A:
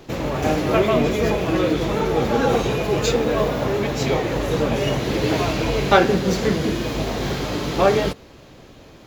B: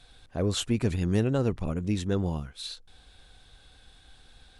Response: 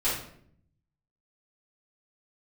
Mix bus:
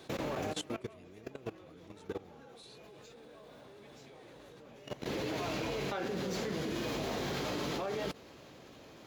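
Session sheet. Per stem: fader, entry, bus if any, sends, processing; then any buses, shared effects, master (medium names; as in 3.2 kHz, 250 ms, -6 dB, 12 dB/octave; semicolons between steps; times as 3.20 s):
-4.5 dB, 0.00 s, no send, compression 3:1, threshold -21 dBFS, peak gain reduction 9.5 dB; auto duck -12 dB, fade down 0.85 s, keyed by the second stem
+1.5 dB, 0.00 s, no send, high-pass 87 Hz 24 dB/octave; compression 2.5:1, threshold -41 dBFS, peak gain reduction 14.5 dB; comb 2.6 ms, depth 41%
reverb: none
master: high-pass 180 Hz 6 dB/octave; level held to a coarse grid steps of 18 dB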